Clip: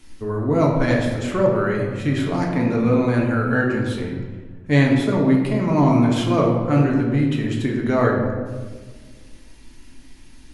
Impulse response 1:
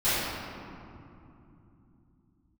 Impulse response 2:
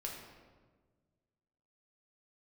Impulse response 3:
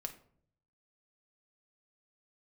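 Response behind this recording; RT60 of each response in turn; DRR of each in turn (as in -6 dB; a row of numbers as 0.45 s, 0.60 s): 2; 2.9 s, 1.5 s, 0.60 s; -18.0 dB, -2.0 dB, 5.0 dB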